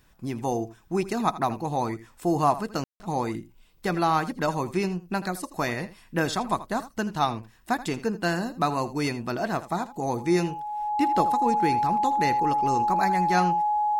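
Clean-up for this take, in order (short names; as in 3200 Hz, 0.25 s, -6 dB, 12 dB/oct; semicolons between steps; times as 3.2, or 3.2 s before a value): notch 840 Hz, Q 30; room tone fill 2.84–3; inverse comb 81 ms -15.5 dB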